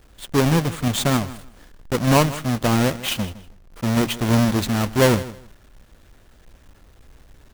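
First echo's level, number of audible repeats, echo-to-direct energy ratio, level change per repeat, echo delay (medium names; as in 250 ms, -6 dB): -17.0 dB, 2, -17.0 dB, -14.0 dB, 160 ms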